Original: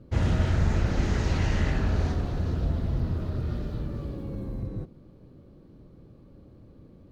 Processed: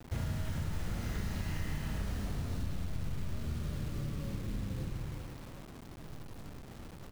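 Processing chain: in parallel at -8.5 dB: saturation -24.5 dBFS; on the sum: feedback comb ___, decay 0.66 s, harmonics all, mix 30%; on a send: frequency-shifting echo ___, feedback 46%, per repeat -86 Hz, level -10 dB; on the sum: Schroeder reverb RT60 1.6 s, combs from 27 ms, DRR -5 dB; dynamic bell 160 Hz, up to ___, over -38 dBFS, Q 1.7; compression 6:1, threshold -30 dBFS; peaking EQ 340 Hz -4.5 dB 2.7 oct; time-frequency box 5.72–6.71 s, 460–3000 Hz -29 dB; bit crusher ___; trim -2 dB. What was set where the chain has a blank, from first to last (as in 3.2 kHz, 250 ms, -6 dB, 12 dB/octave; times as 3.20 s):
140 Hz, 104 ms, +5 dB, 8-bit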